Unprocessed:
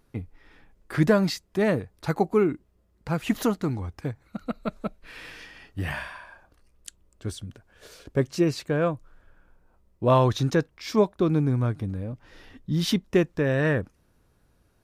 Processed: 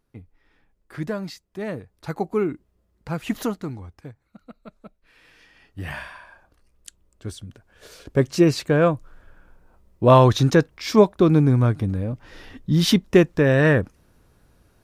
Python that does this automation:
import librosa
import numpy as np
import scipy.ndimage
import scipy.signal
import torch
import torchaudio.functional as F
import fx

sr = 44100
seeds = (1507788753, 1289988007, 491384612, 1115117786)

y = fx.gain(x, sr, db=fx.line((1.5, -8.5), (2.43, -1.0), (3.43, -1.0), (4.43, -13.0), (5.21, -13.0), (5.95, -0.5), (7.45, -0.5), (8.46, 6.5)))